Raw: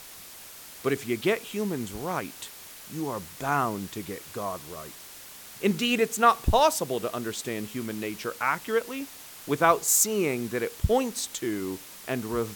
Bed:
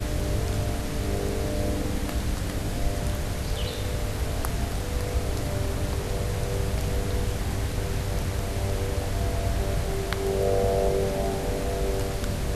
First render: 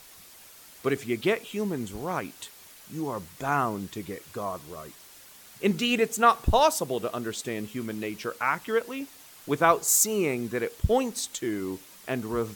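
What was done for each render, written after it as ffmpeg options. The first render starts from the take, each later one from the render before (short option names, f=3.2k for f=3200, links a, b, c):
-af "afftdn=nr=6:nf=-46"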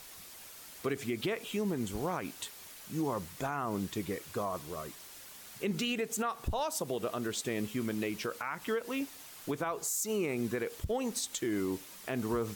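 -af "acompressor=threshold=-25dB:ratio=4,alimiter=limit=-24dB:level=0:latency=1:release=94"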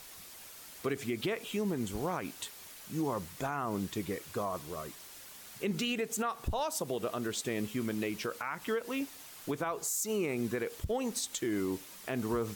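-af anull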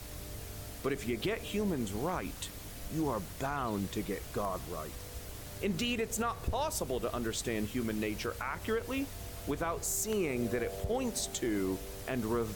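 -filter_complex "[1:a]volume=-18.5dB[a];[0:a][a]amix=inputs=2:normalize=0"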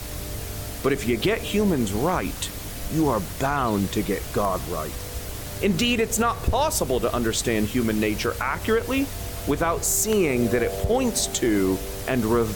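-af "volume=11.5dB"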